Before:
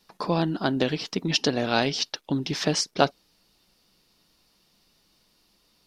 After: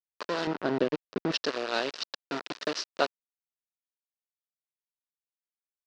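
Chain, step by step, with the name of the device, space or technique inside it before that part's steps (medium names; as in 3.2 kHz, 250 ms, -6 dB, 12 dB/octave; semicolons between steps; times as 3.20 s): hand-held game console (bit crusher 4-bit; cabinet simulation 410–4700 Hz, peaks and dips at 800 Hz -8 dB, 2.2 kHz -6 dB, 3.3 kHz -5 dB); 0.47–1.32 s: tilt EQ -4 dB/octave; trim -3 dB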